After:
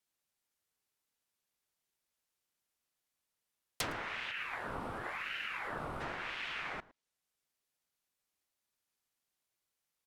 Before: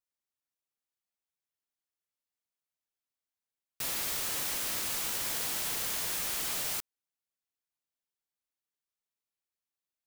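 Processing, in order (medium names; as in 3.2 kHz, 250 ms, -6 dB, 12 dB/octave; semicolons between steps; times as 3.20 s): time-frequency box 4.31–6.01 s, 900–8100 Hz -12 dB; low-pass that closes with the level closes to 820 Hz, closed at -30 dBFS; echo from a far wall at 19 m, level -21 dB; ring modulator with a swept carrier 1.4 kHz, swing 60%, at 0.93 Hz; trim +9.5 dB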